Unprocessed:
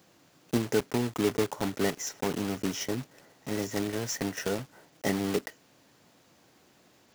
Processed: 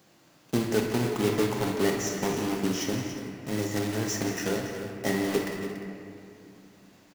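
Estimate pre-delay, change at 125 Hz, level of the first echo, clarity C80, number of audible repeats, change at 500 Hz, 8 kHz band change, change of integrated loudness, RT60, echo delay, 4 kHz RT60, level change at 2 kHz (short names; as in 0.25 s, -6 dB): 5 ms, +4.0 dB, -11.5 dB, 3.0 dB, 4, +2.5 dB, +2.0 dB, +2.0 dB, 2.5 s, 47 ms, 1.4 s, +3.0 dB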